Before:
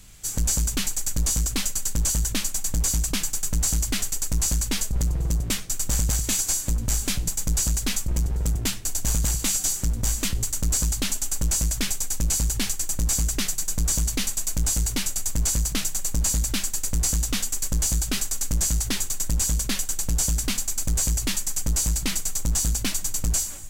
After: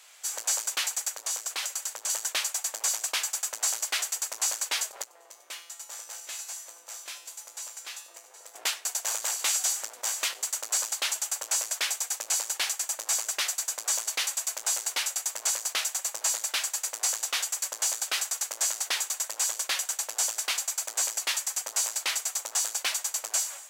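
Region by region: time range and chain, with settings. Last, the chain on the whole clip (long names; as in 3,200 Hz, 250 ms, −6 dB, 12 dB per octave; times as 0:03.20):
0:01.08–0:02.10: parametric band 140 Hz +5 dB 0.98 octaves + downward compressor 4 to 1, threshold −23 dBFS
0:05.04–0:08.55: tuned comb filter 170 Hz, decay 0.71 s, mix 80% + single-tap delay 769 ms −13 dB
whole clip: inverse Chebyshev high-pass filter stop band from 180 Hz, stop band 60 dB; high-shelf EQ 5,000 Hz −8.5 dB; level +3.5 dB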